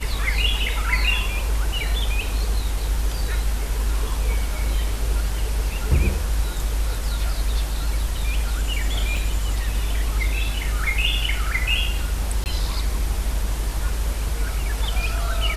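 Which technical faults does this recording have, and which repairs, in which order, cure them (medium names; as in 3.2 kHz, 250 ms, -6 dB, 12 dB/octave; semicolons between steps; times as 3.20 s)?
9.17 s: dropout 2.3 ms
12.44–12.46 s: dropout 19 ms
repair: interpolate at 9.17 s, 2.3 ms; interpolate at 12.44 s, 19 ms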